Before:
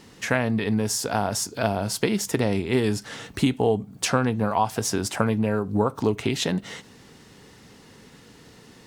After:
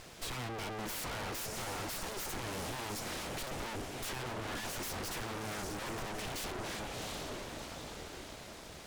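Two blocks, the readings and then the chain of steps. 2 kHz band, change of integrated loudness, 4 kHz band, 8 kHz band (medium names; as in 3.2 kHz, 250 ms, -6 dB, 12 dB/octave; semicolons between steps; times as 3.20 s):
-10.5 dB, -15.5 dB, -9.0 dB, -11.5 dB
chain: echo that smears into a reverb 700 ms, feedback 47%, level -11 dB; full-wave rectifier; valve stage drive 28 dB, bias 0.4; trim +3.5 dB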